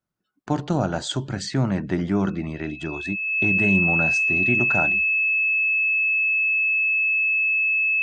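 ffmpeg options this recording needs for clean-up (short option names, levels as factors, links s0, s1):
-af "bandreject=f=2600:w=30"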